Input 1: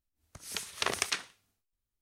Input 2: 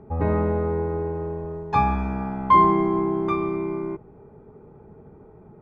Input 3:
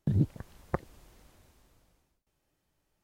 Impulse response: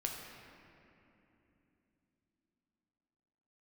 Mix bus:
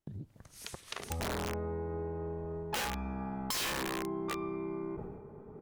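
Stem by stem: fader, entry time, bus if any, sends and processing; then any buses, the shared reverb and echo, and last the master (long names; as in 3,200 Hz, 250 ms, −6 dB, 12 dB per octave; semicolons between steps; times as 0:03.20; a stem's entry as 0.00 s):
−7.5 dB, 0.10 s, no send, pitch vibrato 2.5 Hz 56 cents
−3.5 dB, 1.00 s, send −23.5 dB, mains-hum notches 60/120 Hz; level that may fall only so fast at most 65 dB per second
−12.0 dB, 0.00 s, send −20 dB, downward compressor, threshold −29 dBFS, peak gain reduction 9 dB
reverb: on, RT60 3.1 s, pre-delay 7 ms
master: wrap-around overflow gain 18 dB; downward compressor 3 to 1, threshold −37 dBFS, peak gain reduction 11.5 dB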